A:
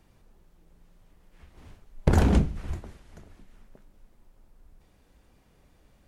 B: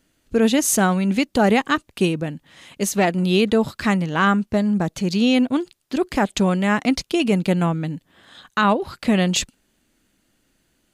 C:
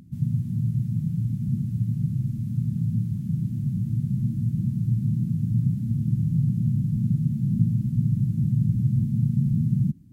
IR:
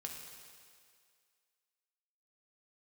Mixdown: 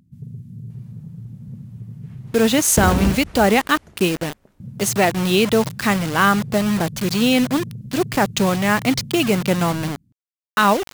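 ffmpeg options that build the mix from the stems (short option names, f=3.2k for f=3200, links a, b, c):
-filter_complex "[0:a]highpass=57,adelay=700,volume=2dB[a];[1:a]lowshelf=f=260:g=-6,acrusher=bits=4:mix=0:aa=0.000001,adelay=2000,volume=3dB[b];[2:a]asoftclip=type=tanh:threshold=-15dB,volume=-9dB,asplit=3[c][d][e];[c]atrim=end=2.62,asetpts=PTS-STARTPTS,afade=t=out:st=2.616:d=0.004:c=hsin[f];[d]atrim=start=2.62:end=4.6,asetpts=PTS-STARTPTS,volume=0[g];[e]atrim=start=4.6,asetpts=PTS-STARTPTS,afade=t=in:d=0.004:c=hsin[h];[f][g][h]concat=n=3:v=0:a=1[i];[a][b][i]amix=inputs=3:normalize=0"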